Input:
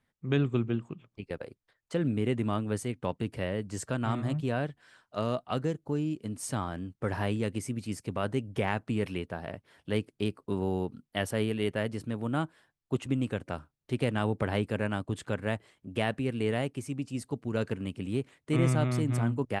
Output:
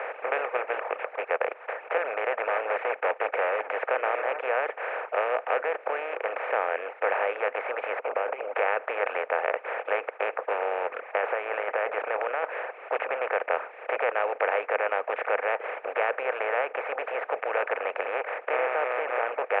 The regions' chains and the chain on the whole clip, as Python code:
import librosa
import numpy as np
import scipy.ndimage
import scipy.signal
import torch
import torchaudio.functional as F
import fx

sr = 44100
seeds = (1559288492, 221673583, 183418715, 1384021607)

y = fx.chain(x, sr, fx.highpass(hz=93.0, slope=12),
    fx.leveller(passes=1),
    fx.clip_hard(threshold_db=-26.5), at=(2.47, 3.72))
y = fx.chain(y, sr, fx.moving_average(points=25),
    fx.over_compress(threshold_db=-36.0, ratio=-0.5), at=(7.99, 8.56))
y = fx.chain(y, sr, fx.lowpass(hz=2400.0, slope=12),
    fx.over_compress(threshold_db=-35.0, ratio=-1.0), at=(11.01, 12.44))
y = fx.bin_compress(y, sr, power=0.2)
y = scipy.signal.sosfilt(scipy.signal.cheby1(4, 1.0, [480.0, 2500.0], 'bandpass', fs=sr, output='sos'), y)
y = fx.dereverb_blind(y, sr, rt60_s=0.71)
y = F.gain(torch.from_numpy(y), 1.5).numpy()